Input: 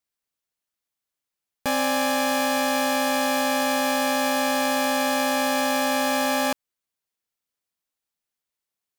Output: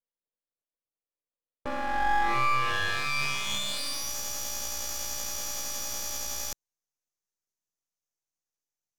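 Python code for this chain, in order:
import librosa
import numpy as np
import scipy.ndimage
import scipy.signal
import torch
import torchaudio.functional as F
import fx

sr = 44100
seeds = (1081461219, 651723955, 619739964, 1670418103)

y = fx.filter_sweep_bandpass(x, sr, from_hz=330.0, to_hz=4400.0, start_s=1.58, end_s=4.15, q=4.7)
y = fx.formant_shift(y, sr, semitones=6)
y = np.maximum(y, 0.0)
y = y * 10.0 ** (9.0 / 20.0)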